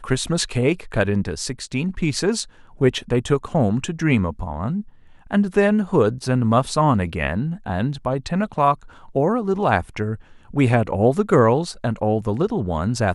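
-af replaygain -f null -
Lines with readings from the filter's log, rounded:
track_gain = +0.6 dB
track_peak = 0.522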